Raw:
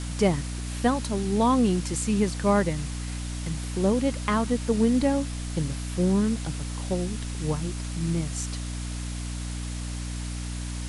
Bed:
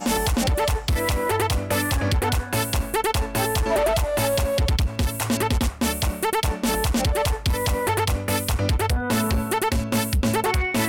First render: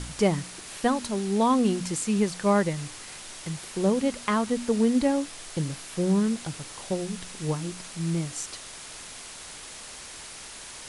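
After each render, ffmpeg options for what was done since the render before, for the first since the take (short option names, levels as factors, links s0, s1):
-af "bandreject=f=60:t=h:w=4,bandreject=f=120:t=h:w=4,bandreject=f=180:t=h:w=4,bandreject=f=240:t=h:w=4,bandreject=f=300:t=h:w=4"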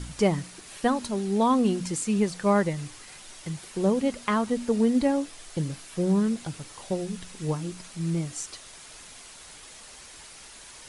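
-af "afftdn=nr=6:nf=-42"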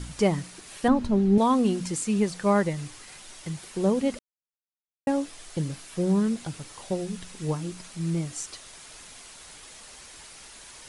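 -filter_complex "[0:a]asettb=1/sr,asplit=3[s0][s1][s2];[s0]atrim=end=0.884[s3];[s1]atrim=start=0.88:end=1.38,asetpts=PTS-STARTPTS,afade=t=in:d=0.004:c=qsin,afade=t=out:st=0.496:d=0.004:c=qsin,aemphasis=mode=reproduction:type=riaa[s4];[s2]atrim=start=1.376[s5];[s3][s4]acrossfade=d=0.004:c1=hsin:c2=qsin[s6];[s6][s5]acrossfade=d=0.004:c1=qsin:c2=hsin,asplit=3[s7][s8][s9];[s7]atrim=end=4.19,asetpts=PTS-STARTPTS,afade=t=out:st=4.186:d=0.004:c=hsin[s10];[s8]atrim=start=4.19:end=5.07,asetpts=PTS-STARTPTS,volume=0[s11];[s9]atrim=start=5.07,asetpts=PTS-STARTPTS,afade=t=in:d=0.004:c=hsin[s12];[s10][s11][s12]concat=n=3:v=0:a=1"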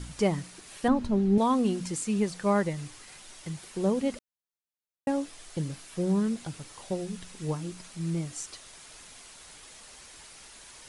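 -af "volume=0.708"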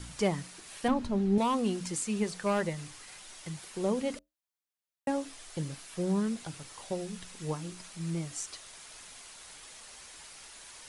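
-filter_complex "[0:a]acrossover=split=530|2600[s0][s1][s2];[s0]flanger=delay=9.8:depth=3.4:regen=-67:speed=0.64:shape=sinusoidal[s3];[s1]asoftclip=type=hard:threshold=0.0447[s4];[s3][s4][s2]amix=inputs=3:normalize=0"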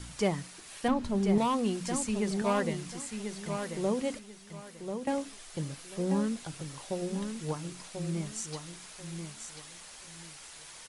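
-af "aecho=1:1:1039|2078|3117:0.447|0.107|0.0257"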